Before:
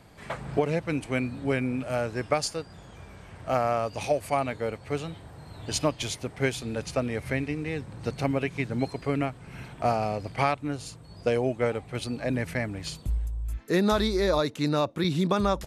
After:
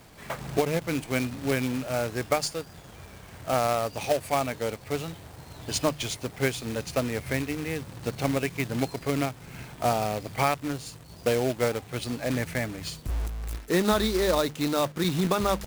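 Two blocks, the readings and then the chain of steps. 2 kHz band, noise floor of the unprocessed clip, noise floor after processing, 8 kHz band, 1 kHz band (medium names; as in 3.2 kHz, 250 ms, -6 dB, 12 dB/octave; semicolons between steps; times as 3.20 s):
+1.0 dB, -48 dBFS, -48 dBFS, +4.0 dB, +0.5 dB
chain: hum notches 50/100/150/200 Hz; companded quantiser 4-bit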